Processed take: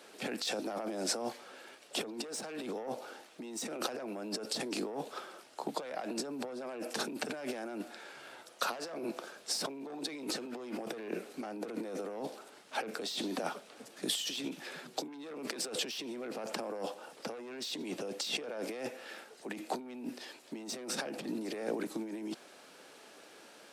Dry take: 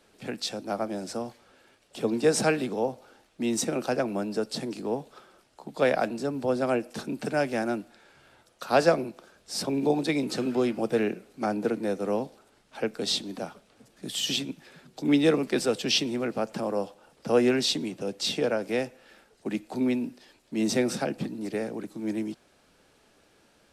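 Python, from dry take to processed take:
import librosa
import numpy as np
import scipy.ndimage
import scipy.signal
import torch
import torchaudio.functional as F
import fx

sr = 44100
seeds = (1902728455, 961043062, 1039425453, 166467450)

y = 10.0 ** (-22.5 / 20.0) * np.tanh(x / 10.0 ** (-22.5 / 20.0))
y = fx.over_compress(y, sr, threshold_db=-38.0, ratio=-1.0)
y = scipy.signal.sosfilt(scipy.signal.butter(2, 310.0, 'highpass', fs=sr, output='sos'), y)
y = y * librosa.db_to_amplitude(1.0)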